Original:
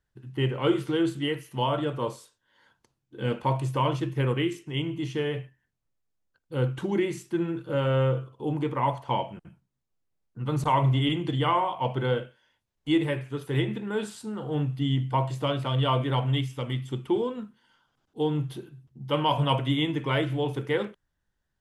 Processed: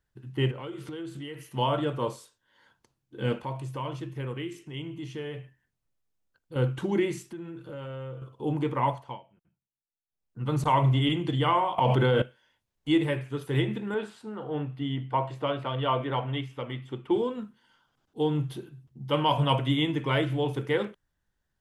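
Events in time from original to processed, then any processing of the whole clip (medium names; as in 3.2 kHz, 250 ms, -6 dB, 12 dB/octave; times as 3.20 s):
0.51–1.50 s: compression 5:1, threshold -36 dBFS
3.38–6.56 s: compression 1.5:1, threshold -46 dBFS
7.24–8.22 s: compression 3:1, threshold -40 dBFS
8.84–10.43 s: dip -23 dB, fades 0.36 s linear
11.78–12.22 s: level flattener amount 100%
13.94–17.11 s: tone controls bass -8 dB, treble -15 dB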